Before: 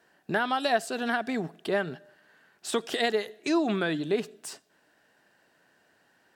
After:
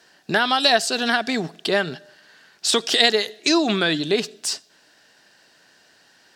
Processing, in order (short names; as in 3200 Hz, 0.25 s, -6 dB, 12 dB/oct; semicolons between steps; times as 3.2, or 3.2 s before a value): bell 4900 Hz +14 dB 1.6 oct; gain +5.5 dB